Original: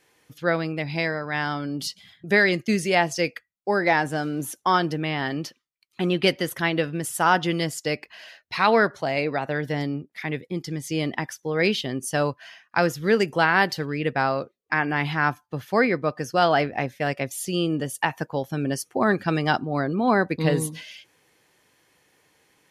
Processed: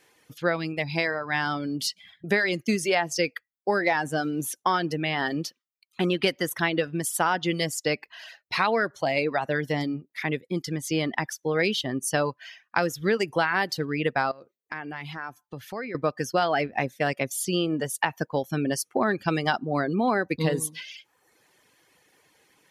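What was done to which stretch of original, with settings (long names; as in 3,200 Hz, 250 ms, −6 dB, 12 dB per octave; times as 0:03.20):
0:14.31–0:15.95: downward compressor 3 to 1, threshold −37 dBFS
whole clip: reverb reduction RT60 0.77 s; low-shelf EQ 130 Hz −5.5 dB; downward compressor, threshold −22 dBFS; level +2.5 dB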